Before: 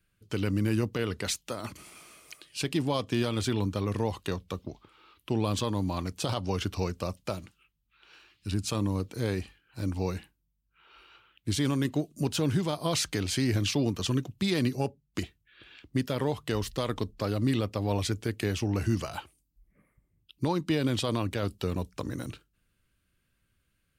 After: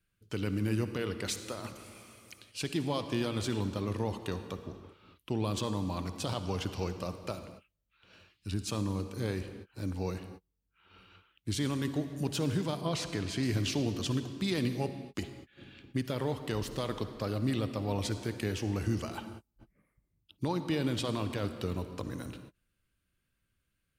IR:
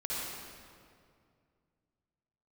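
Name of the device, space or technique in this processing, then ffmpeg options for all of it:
keyed gated reverb: -filter_complex "[0:a]asplit=3[s0][s1][s2];[1:a]atrim=start_sample=2205[s3];[s1][s3]afir=irnorm=-1:irlink=0[s4];[s2]apad=whole_len=1057579[s5];[s4][s5]sidechaingate=range=0.01:threshold=0.00141:ratio=16:detection=peak,volume=0.251[s6];[s0][s6]amix=inputs=2:normalize=0,asettb=1/sr,asplit=3[s7][s8][s9];[s7]atrim=end=12.814[s10];[s8]atrim=start=12.81:end=13.43,asetpts=PTS-STARTPTS,afade=t=in:d=0.004:c=qsin,afade=t=out:st=0.616:d=0.004:c=qsin,lowpass=f=3600:p=1[s11];[s9]atrim=start=13.426[s12];[s10][s11]acrossfade=d=0.004:c1=hsin:c2=qsin[s13];[s13][s12]acrossfade=d=0.004:c1=qsin:c2=hsin,volume=0.531"

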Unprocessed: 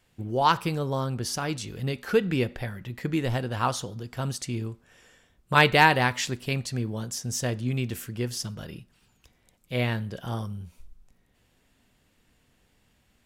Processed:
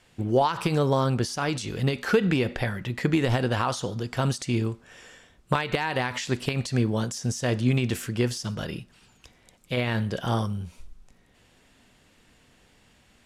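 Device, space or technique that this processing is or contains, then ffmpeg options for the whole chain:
de-esser from a sidechain: -filter_complex "[0:a]lowpass=9600,asplit=2[s0][s1];[s1]highpass=f=6100:p=1,apad=whole_len=584339[s2];[s0][s2]sidechaincompress=threshold=0.00794:ratio=10:attack=3.7:release=74,lowshelf=f=180:g=-5,volume=2.66"

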